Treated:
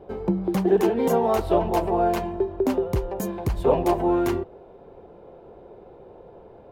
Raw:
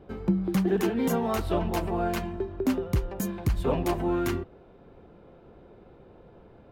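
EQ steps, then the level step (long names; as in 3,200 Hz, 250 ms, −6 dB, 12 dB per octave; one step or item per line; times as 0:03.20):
flat-topped bell 600 Hz +8.5 dB
0.0 dB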